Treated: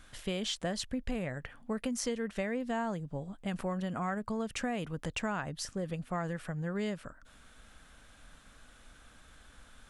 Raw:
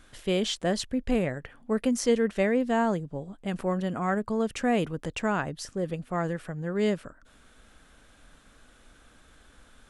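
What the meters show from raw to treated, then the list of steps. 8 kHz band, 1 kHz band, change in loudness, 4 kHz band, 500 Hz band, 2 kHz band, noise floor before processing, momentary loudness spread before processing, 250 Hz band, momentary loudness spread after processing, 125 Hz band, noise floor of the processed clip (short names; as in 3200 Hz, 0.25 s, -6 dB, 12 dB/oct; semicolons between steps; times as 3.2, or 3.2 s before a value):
-3.5 dB, -7.0 dB, -7.5 dB, -4.5 dB, -10.0 dB, -6.0 dB, -57 dBFS, 9 LU, -8.0 dB, 5 LU, -5.0 dB, -58 dBFS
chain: bell 370 Hz -6 dB 1.1 oct; compressor 6:1, threshold -31 dBFS, peak gain reduction 9.5 dB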